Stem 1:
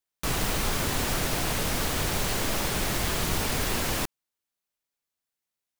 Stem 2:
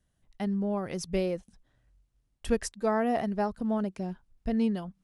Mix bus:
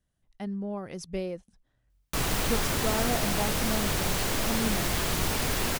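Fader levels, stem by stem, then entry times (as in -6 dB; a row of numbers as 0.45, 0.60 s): -0.5, -4.0 dB; 1.90, 0.00 s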